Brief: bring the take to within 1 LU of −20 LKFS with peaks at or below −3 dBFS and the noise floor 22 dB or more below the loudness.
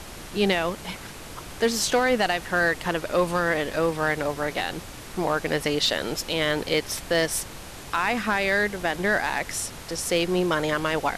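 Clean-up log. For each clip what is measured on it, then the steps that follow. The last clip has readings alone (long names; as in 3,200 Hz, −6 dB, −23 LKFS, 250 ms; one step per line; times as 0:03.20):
share of clipped samples 0.3%; peaks flattened at −14.0 dBFS; background noise floor −40 dBFS; target noise floor −47 dBFS; integrated loudness −25.0 LKFS; sample peak −14.0 dBFS; target loudness −20.0 LKFS
→ clipped peaks rebuilt −14 dBFS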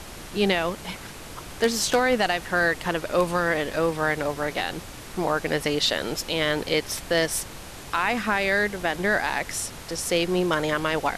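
share of clipped samples 0.0%; background noise floor −40 dBFS; target noise floor −47 dBFS
→ noise reduction from a noise print 7 dB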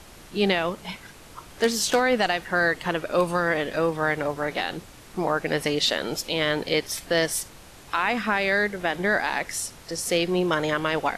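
background noise floor −47 dBFS; integrated loudness −24.5 LKFS; sample peak −5.5 dBFS; target loudness −20.0 LKFS
→ level +4.5 dB
brickwall limiter −3 dBFS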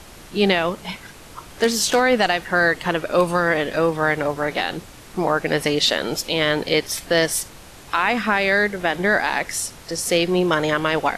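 integrated loudness −20.0 LKFS; sample peak −3.0 dBFS; background noise floor −42 dBFS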